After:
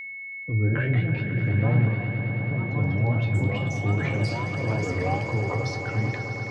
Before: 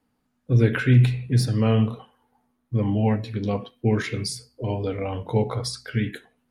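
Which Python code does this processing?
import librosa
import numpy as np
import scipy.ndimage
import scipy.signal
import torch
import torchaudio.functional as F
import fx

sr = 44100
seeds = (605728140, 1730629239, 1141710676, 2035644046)

p1 = fx.wiener(x, sr, points=9)
p2 = fx.env_lowpass_down(p1, sr, base_hz=1200.0, full_db=-17.5)
p3 = scipy.signal.sosfilt(scipy.signal.butter(2, 3800.0, 'lowpass', fs=sr, output='sos'), p2)
p4 = fx.over_compress(p3, sr, threshold_db=-27.0, ratio=-0.5)
p5 = p3 + (p4 * librosa.db_to_amplitude(3.0))
p6 = fx.comb_fb(p5, sr, f0_hz=110.0, decay_s=0.32, harmonics='odd', damping=0.0, mix_pct=80)
p7 = fx.wow_flutter(p6, sr, seeds[0], rate_hz=2.1, depth_cents=140.0)
p8 = fx.echo_pitch(p7, sr, ms=336, semitones=4, count=2, db_per_echo=-6.0)
p9 = p8 + 10.0 ** (-34.0 / 20.0) * np.sin(2.0 * np.pi * 2200.0 * np.arange(len(p8)) / sr)
y = p9 + fx.echo_swell(p9, sr, ms=108, loudest=5, wet_db=-13, dry=0)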